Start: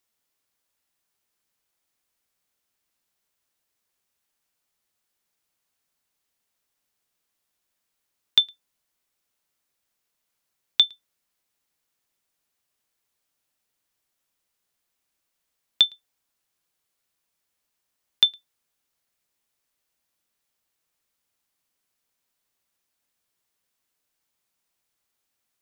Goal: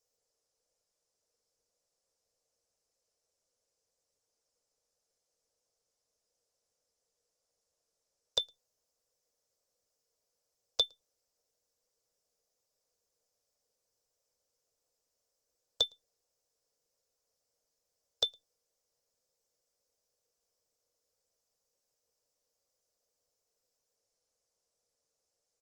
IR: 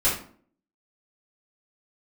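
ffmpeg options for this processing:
-filter_complex "[0:a]firequalizer=gain_entry='entry(110,0);entry(200,-25);entry(310,-24);entry(460,12);entry(810,-5);entry(1400,-11);entry(2300,-29);entry(5100,2);entry(11000,-8)':delay=0.05:min_phase=1,asplit=2[link_01][link_02];[link_02]aeval=exprs='sgn(val(0))*max(abs(val(0))-0.00237,0)':channel_layout=same,volume=-8dB[link_03];[link_01][link_03]amix=inputs=2:normalize=0" -ar 48000 -c:a libopus -b:a 16k

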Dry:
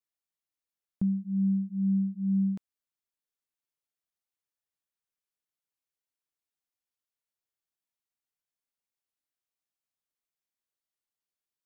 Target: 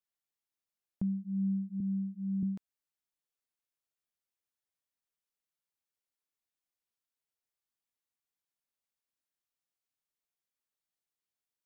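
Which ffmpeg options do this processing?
ffmpeg -i in.wav -filter_complex "[0:a]asettb=1/sr,asplit=3[link_01][link_02][link_03];[link_01]atrim=end=1.804[link_04];[link_02]atrim=start=1.8:end=2.43,asetpts=PTS-STARTPTS,afade=type=in:duration=0.004:curve=qsin,afade=type=out:start_time=0.626:duration=0.004:curve=qsin,highpass=180[link_05];[link_03]atrim=start=2.426[link_06];[link_04][link_05]acrossfade=duration=0.004:curve1=hsin:curve2=qsin[link_07];[link_07][link_06]acrossfade=duration=0.004:curve1=qsin:curve2=hsin,asplit=2[link_08][link_09];[link_09]acompressor=threshold=-36dB:ratio=6,volume=-2.5dB[link_10];[link_08][link_10]amix=inputs=2:normalize=0,volume=-7dB" out.wav

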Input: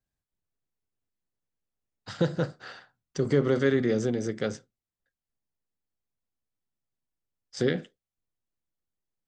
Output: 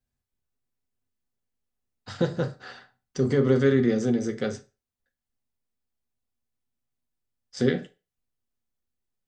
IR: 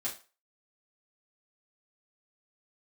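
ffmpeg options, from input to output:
-filter_complex "[0:a]asplit=2[link_01][link_02];[1:a]atrim=start_sample=2205,asetrate=48510,aresample=44100,lowshelf=frequency=270:gain=10.5[link_03];[link_02][link_03]afir=irnorm=-1:irlink=0,volume=-5dB[link_04];[link_01][link_04]amix=inputs=2:normalize=0,volume=-2.5dB"

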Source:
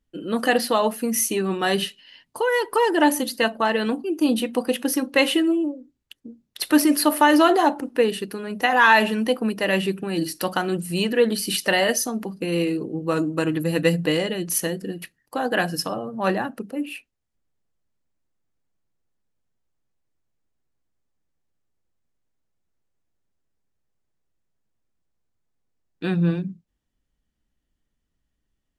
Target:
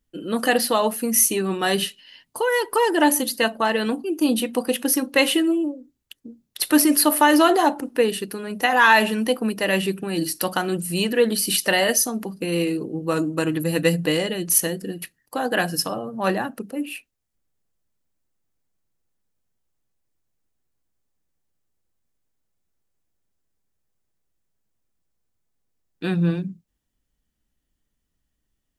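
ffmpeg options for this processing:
ffmpeg -i in.wav -af "highshelf=frequency=6900:gain=8.5" out.wav

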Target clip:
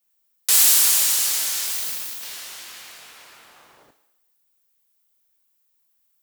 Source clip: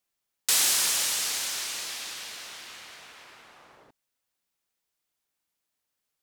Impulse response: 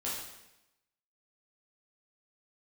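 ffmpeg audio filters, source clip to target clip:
-filter_complex "[0:a]asettb=1/sr,asplit=3[link_01][link_02][link_03];[link_01]atrim=end=1.664[link_04];[link_02]atrim=start=1.66:end=2.23,asetpts=PTS-STARTPTS,afade=type=in:duration=0.004:curve=qsin,afade=type=out:start_time=0.566:duration=0.004:curve=qsin,aeval=exprs='0.075*(cos(1*acos(clip(val(0)/0.075,-1,1)))-cos(1*PI/2))+0.0133*(cos(7*acos(clip(val(0)/0.075,-1,1)))-cos(7*PI/2))':channel_layout=same[link_05];[link_03]atrim=start=2.226[link_06];[link_04][link_05]acrossfade=duration=0.004:curve1=hsin:curve2=qsin[link_07];[link_07][link_06]acrossfade=duration=0.004:curve1=qsin:curve2=hsin,asplit=2[link_08][link_09];[link_09]aemphasis=mode=production:type=riaa[link_10];[1:a]atrim=start_sample=2205[link_11];[link_10][link_11]afir=irnorm=-1:irlink=0,volume=-10.5dB[link_12];[link_08][link_12]amix=inputs=2:normalize=0"

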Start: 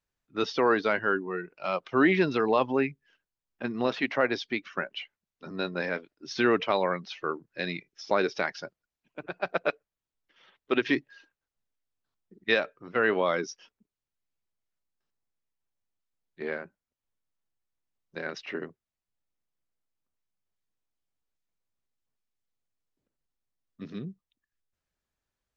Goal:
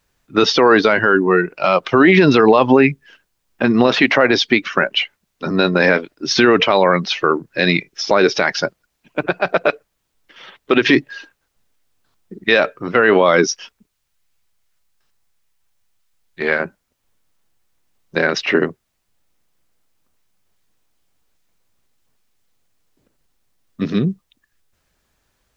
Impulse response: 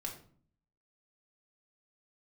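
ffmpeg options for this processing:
-filter_complex "[0:a]asettb=1/sr,asplit=3[link_01][link_02][link_03];[link_01]atrim=end=13.474[link_04];[link_02]atrim=start=13.47:end=16.6,asetpts=PTS-STARTPTS,afade=type=in:duration=0.004:curve=qsin,afade=type=out:start_time=3.126:duration=0.004:curve=qsin,equalizer=frequency=300:width_type=o:width=2.7:gain=-8[link_05];[link_03]atrim=start=16.596[link_06];[link_04][link_05]acrossfade=duration=0.004:curve1=hsin:curve2=qsin[link_07];[link_07][link_06]acrossfade=duration=0.004:curve1=qsin:curve2=hsin,alimiter=level_in=21dB:limit=-1dB:release=50:level=0:latency=1,volume=-1dB"

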